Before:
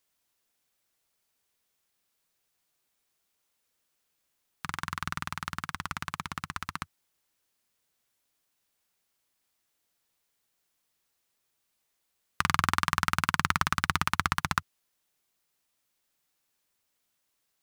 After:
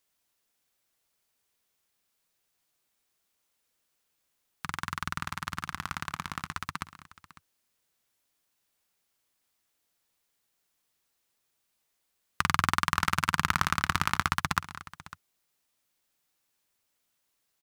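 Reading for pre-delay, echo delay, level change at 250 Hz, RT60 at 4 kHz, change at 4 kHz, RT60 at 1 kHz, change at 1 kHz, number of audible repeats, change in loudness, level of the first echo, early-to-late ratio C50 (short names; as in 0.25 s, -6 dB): none, 0.197 s, 0.0 dB, none, 0.0 dB, none, 0.0 dB, 2, 0.0 dB, -16.5 dB, none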